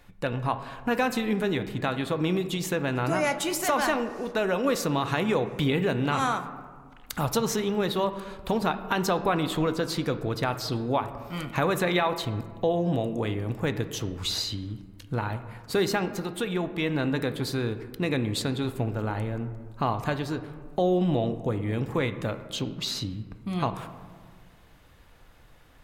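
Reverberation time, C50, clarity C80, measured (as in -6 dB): 1.7 s, 11.5 dB, 13.0 dB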